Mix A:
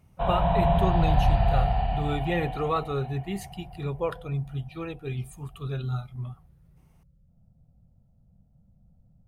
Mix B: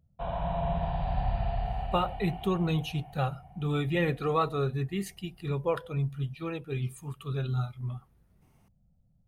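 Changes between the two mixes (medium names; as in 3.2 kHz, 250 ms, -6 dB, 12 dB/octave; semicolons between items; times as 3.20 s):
speech: entry +1.65 s; background -8.0 dB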